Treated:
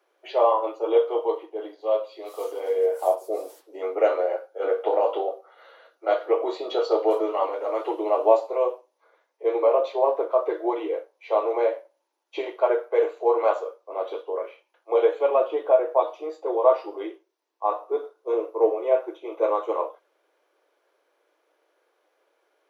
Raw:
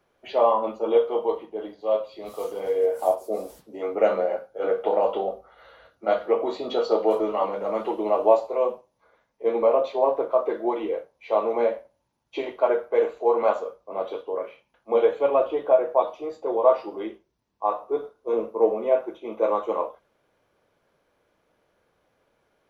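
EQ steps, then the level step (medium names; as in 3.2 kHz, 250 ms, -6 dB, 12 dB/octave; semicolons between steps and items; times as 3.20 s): steep high-pass 310 Hz 72 dB/octave; 0.0 dB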